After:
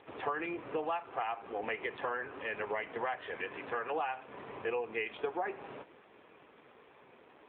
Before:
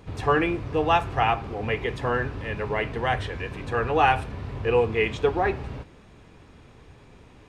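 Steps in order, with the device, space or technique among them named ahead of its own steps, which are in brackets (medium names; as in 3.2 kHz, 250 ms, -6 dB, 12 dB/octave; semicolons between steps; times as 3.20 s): dynamic bell 450 Hz, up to -3 dB, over -35 dBFS, Q 5.4; voicemail (band-pass 410–3300 Hz; compression 10:1, threshold -31 dBFS, peak gain reduction 16 dB; AMR-NB 7.4 kbps 8 kHz)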